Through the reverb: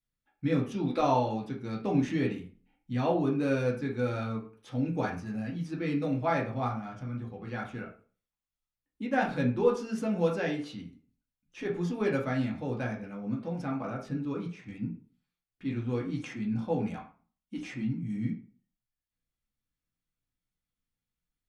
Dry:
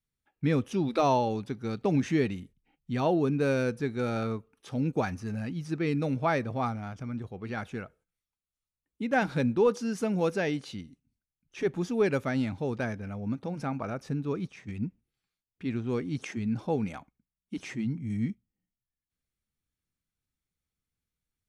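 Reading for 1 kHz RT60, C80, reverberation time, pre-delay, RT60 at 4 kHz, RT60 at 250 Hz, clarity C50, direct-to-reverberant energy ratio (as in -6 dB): 0.40 s, 14.0 dB, 0.45 s, 3 ms, 0.30 s, 0.40 s, 9.0 dB, -2.5 dB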